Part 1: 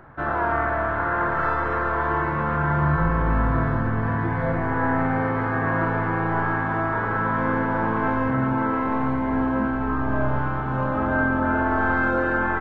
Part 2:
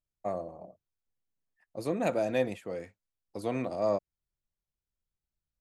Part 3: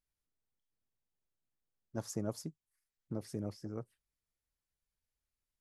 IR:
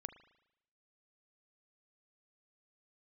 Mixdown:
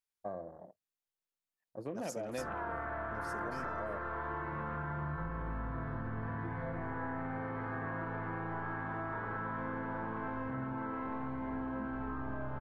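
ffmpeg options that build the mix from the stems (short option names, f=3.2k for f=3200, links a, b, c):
-filter_complex "[0:a]adelay=2200,volume=-8dB[a];[1:a]afwtdn=0.00562,volume=-5dB[b];[2:a]highpass=f=600:p=1,volume=31.5dB,asoftclip=hard,volume=-31.5dB,volume=-2dB[c];[a][b]amix=inputs=2:normalize=0,highshelf=f=7.8k:g=-5.5,acompressor=threshold=-36dB:ratio=6,volume=0dB[d];[c][d]amix=inputs=2:normalize=0"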